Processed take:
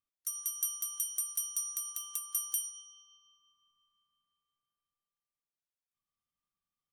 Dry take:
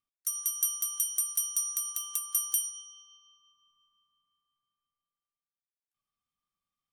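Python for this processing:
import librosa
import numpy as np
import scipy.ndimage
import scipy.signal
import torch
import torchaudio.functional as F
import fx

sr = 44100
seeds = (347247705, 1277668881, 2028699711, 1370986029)

y = fx.low_shelf(x, sr, hz=430.0, db=3.5)
y = y * librosa.db_to_amplitude(-5.0)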